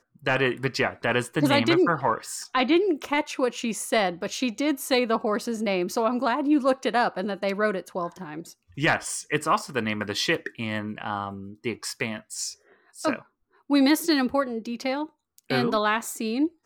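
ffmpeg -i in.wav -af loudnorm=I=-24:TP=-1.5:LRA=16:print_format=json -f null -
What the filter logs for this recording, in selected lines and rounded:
"input_i" : "-25.4",
"input_tp" : "-10.3",
"input_lra" : "4.0",
"input_thresh" : "-35.7",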